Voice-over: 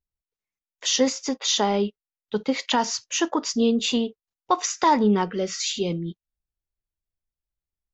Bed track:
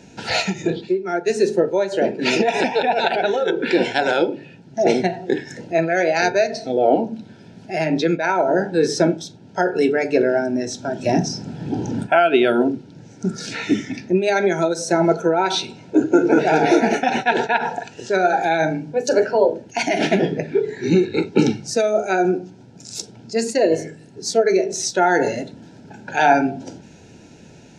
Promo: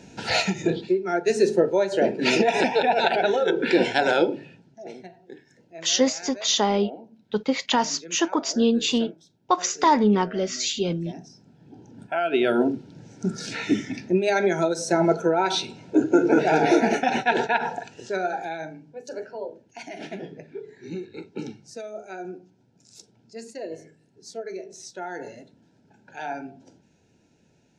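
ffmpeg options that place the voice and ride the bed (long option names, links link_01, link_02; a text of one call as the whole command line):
ffmpeg -i stem1.wav -i stem2.wav -filter_complex "[0:a]adelay=5000,volume=0.5dB[link_01];[1:a]volume=17.5dB,afade=type=out:start_time=4.35:duration=0.44:silence=0.0891251,afade=type=in:start_time=11.96:duration=0.6:silence=0.105925,afade=type=out:start_time=17.5:duration=1.21:silence=0.188365[link_02];[link_01][link_02]amix=inputs=2:normalize=0" out.wav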